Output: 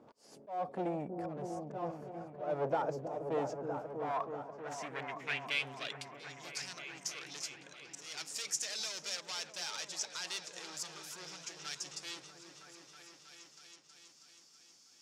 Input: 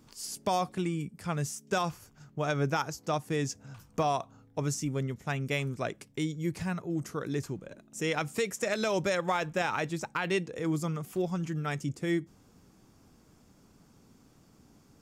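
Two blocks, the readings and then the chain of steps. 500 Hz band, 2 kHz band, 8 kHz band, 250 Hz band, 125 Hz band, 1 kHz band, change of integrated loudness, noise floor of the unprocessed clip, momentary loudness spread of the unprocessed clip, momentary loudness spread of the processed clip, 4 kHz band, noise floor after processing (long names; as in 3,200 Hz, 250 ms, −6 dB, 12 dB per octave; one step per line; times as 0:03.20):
−7.5 dB, −6.5 dB, −0.5 dB, −13.0 dB, −16.5 dB, −7.0 dB, −7.0 dB, −61 dBFS, 7 LU, 19 LU, 0.0 dB, −63 dBFS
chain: gain into a clipping stage and back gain 33.5 dB
volume swells 274 ms
band-pass filter sweep 590 Hz → 5,400 Hz, 0:03.22–0:06.59
on a send: echo whose low-pass opens from repeat to repeat 321 ms, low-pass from 400 Hz, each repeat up 1 octave, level −3 dB
on the sum: level +11 dB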